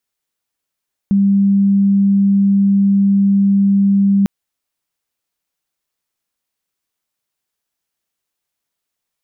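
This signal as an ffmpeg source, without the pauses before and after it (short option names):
-f lavfi -i "sine=f=198:d=3.15:r=44100,volume=9.06dB"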